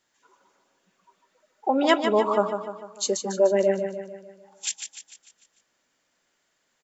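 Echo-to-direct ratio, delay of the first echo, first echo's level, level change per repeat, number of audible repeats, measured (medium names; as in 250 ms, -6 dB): -6.0 dB, 149 ms, -7.5 dB, -6.0 dB, 5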